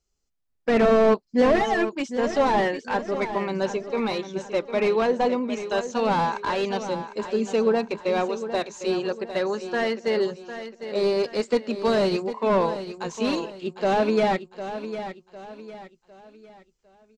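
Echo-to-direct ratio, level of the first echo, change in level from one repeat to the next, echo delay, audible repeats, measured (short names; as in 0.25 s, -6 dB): -10.5 dB, -11.0 dB, -8.5 dB, 0.754 s, 3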